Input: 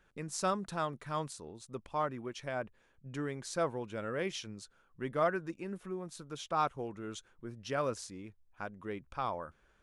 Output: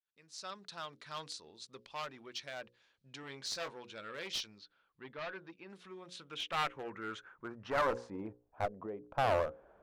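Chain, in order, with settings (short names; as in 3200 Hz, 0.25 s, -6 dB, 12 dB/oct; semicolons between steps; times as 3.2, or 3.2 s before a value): opening faded in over 1.18 s; tilt -3 dB/oct; notches 60/120/180/240/300/360/420/480/540 Hz; 8.65–9.18 compressor 20:1, threshold -43 dBFS, peak gain reduction 12.5 dB; soft clip -27 dBFS, distortion -13 dB; band-pass sweep 4300 Hz -> 660 Hz, 5.74–8.46; one-sided clip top -49.5 dBFS, bottom -36 dBFS; 3.21–3.73 doubler 22 ms -7 dB; 4.58–5.7 air absorption 270 m; gain +15.5 dB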